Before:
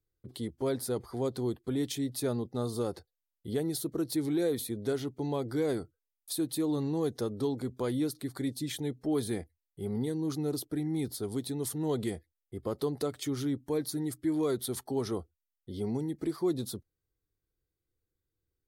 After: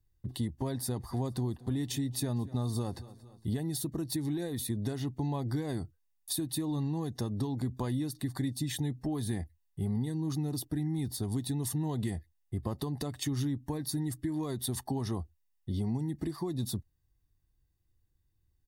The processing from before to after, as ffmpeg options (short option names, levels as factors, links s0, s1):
-filter_complex "[0:a]asettb=1/sr,asplit=3[s0][s1][s2];[s0]atrim=end=0.684[s3];[s1]atrim=start=0.68:end=3.48,asetpts=PTS-STARTPTS,afade=t=in:d=0.004:c=qsin,afade=t=out:st=2.796:d=0.004:c=qsin,aecho=1:1:229|458|687|916:0.075|0.042|0.0235|0.0132,atrim=end_sample=123480[s4];[s2]atrim=start=3.476[s5];[s3][s4]acrossfade=d=0.004:c1=hsin:c2=qsin[s6];[s6][s5]acrossfade=d=0.004:c1=qsin:c2=hsin,lowshelf=f=170:g=8,acompressor=threshold=0.0251:ratio=6,aecho=1:1:1.1:0.59,volume=1.26"